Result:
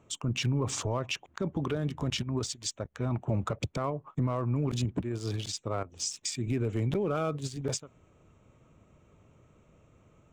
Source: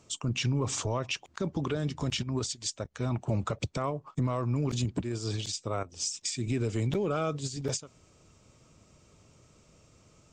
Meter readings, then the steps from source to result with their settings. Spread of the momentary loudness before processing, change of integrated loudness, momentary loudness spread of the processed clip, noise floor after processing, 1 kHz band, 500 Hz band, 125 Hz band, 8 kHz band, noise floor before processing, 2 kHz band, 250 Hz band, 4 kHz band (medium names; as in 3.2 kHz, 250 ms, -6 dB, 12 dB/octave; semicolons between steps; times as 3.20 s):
5 LU, -0.5 dB, 5 LU, -64 dBFS, -0.5 dB, 0.0 dB, 0.0 dB, -1.5 dB, -62 dBFS, -1.0 dB, 0.0 dB, -1.0 dB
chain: local Wiener filter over 9 samples